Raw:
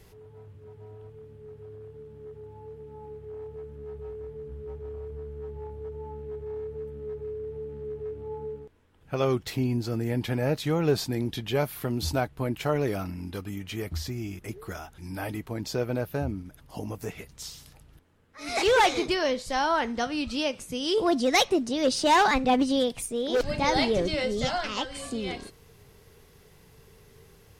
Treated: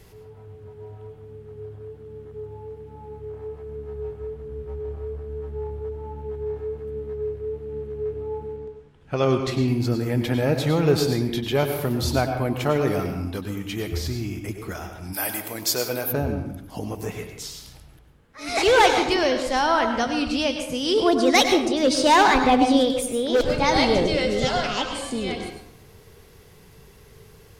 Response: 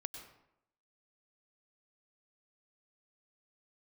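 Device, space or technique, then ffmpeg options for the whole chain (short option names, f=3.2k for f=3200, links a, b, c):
bathroom: -filter_complex "[1:a]atrim=start_sample=2205[a];[0:a][a]afir=irnorm=-1:irlink=0,asettb=1/sr,asplit=3[b][c][d];[b]atrim=end=8.564[e];[c]atrim=start=8.56:end=9.68,asetpts=PTS-STARTPTS,afade=t=in:d=0.004:c=qsin,afade=t=out:st=1.116:d=0.004:c=qsin,lowpass=7.8k[f];[d]atrim=start=9.676[g];[e][f]acrossfade=d=0.004:c1=hsin:c2=qsin[h];[h][g]acrossfade=d=0.004:c1=qsin:c2=hsin,asplit=3[i][j][k];[i]afade=t=out:st=15.12:d=0.02[l];[j]aemphasis=mode=production:type=riaa,afade=t=in:st=15.12:d=0.02,afade=t=out:st=16.11:d=0.02[m];[k]afade=t=in:st=16.11:d=0.02[n];[l][m][n]amix=inputs=3:normalize=0,volume=7.5dB"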